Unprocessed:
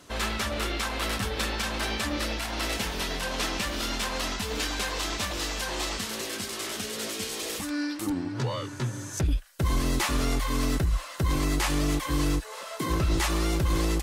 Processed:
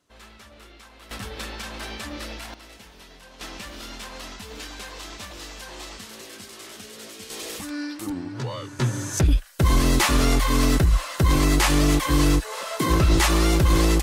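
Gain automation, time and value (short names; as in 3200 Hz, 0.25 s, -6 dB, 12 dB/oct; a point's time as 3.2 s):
-18 dB
from 1.11 s -5 dB
from 2.54 s -16.5 dB
from 3.41 s -7.5 dB
from 7.3 s -1 dB
from 8.79 s +7 dB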